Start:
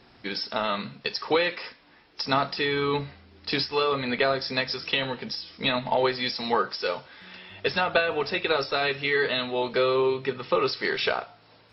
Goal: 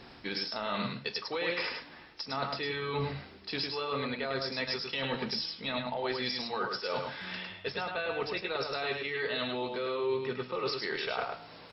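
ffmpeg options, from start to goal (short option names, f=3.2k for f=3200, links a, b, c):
-af "areverse,acompressor=threshold=-36dB:ratio=12,areverse,aecho=1:1:104:0.596,volume=4.5dB"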